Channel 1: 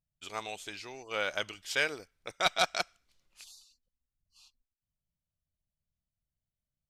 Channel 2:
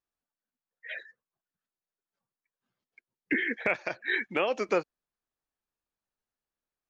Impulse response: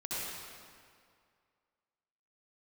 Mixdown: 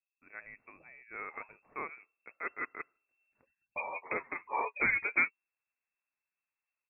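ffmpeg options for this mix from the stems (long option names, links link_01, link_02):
-filter_complex "[0:a]volume=-9dB,asplit=2[link_01][link_02];[1:a]flanger=delay=8.4:depth=2.5:regen=28:speed=0.44:shape=sinusoidal,adelay=450,volume=2.5dB[link_03];[link_02]apad=whole_len=323944[link_04];[link_03][link_04]sidechaincompress=threshold=-57dB:ratio=3:attack=30:release=1210[link_05];[link_01][link_05]amix=inputs=2:normalize=0,lowpass=frequency=2300:width_type=q:width=0.5098,lowpass=frequency=2300:width_type=q:width=0.6013,lowpass=frequency=2300:width_type=q:width=0.9,lowpass=frequency=2300:width_type=q:width=2.563,afreqshift=-2700"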